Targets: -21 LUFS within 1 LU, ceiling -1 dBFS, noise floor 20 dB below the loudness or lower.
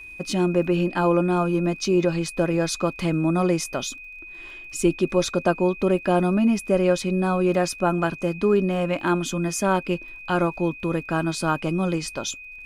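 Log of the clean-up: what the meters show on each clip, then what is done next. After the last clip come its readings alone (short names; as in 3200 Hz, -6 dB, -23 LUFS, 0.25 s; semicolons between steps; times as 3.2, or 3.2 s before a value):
ticks 36/s; steady tone 2500 Hz; tone level -38 dBFS; loudness -23.0 LUFS; peak -7.0 dBFS; loudness target -21.0 LUFS
-> de-click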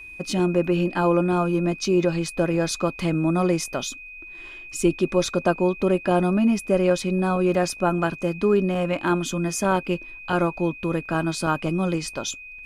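ticks 0/s; steady tone 2500 Hz; tone level -38 dBFS
-> notch 2500 Hz, Q 30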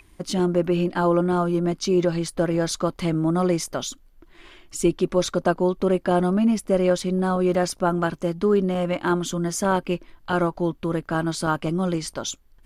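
steady tone none; loudness -23.0 LUFS; peak -7.0 dBFS; loudness target -21.0 LUFS
-> gain +2 dB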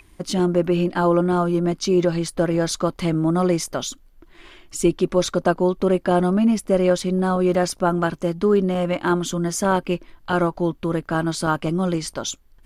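loudness -21.0 LUFS; peak -5.0 dBFS; noise floor -52 dBFS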